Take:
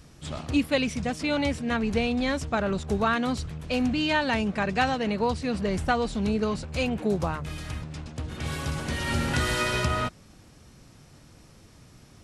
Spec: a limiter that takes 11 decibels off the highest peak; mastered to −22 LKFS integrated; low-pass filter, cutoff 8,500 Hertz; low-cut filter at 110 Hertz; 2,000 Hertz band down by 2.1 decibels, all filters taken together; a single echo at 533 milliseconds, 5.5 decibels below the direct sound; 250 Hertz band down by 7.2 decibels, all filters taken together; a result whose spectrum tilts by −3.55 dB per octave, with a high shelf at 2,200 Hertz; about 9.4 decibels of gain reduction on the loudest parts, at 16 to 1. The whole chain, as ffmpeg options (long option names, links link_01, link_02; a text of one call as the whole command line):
ffmpeg -i in.wav -af "highpass=110,lowpass=8500,equalizer=frequency=250:width_type=o:gain=-8.5,equalizer=frequency=2000:width_type=o:gain=-8,highshelf=frequency=2200:gain=9,acompressor=threshold=-29dB:ratio=16,alimiter=level_in=5.5dB:limit=-24dB:level=0:latency=1,volume=-5.5dB,aecho=1:1:533:0.531,volume=15.5dB" out.wav